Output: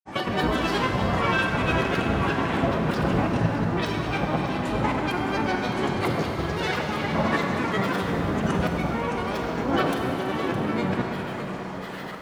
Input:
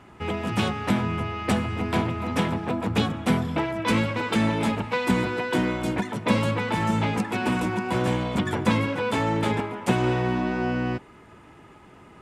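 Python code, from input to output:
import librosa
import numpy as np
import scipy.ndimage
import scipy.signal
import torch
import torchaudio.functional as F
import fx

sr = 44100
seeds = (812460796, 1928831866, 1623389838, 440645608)

p1 = fx.highpass(x, sr, hz=270.0, slope=6)
p2 = fx.over_compress(p1, sr, threshold_db=-35.0, ratio=-1.0)
p3 = fx.granulator(p2, sr, seeds[0], grain_ms=100.0, per_s=20.0, spray_ms=100.0, spread_st=12)
p4 = fx.formant_shift(p3, sr, semitones=-4)
p5 = p4 + fx.echo_single(p4, sr, ms=613, db=-12.0, dry=0)
p6 = fx.rev_schroeder(p5, sr, rt60_s=3.7, comb_ms=32, drr_db=2.0)
y = F.gain(torch.from_numpy(p6), 8.5).numpy()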